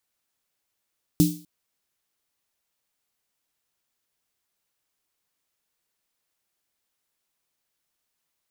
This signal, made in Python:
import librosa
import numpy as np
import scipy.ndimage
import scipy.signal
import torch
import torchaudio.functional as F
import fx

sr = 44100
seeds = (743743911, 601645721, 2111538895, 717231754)

y = fx.drum_snare(sr, seeds[0], length_s=0.25, hz=170.0, second_hz=300.0, noise_db=-11.0, noise_from_hz=3500.0, decay_s=0.36, noise_decay_s=0.42)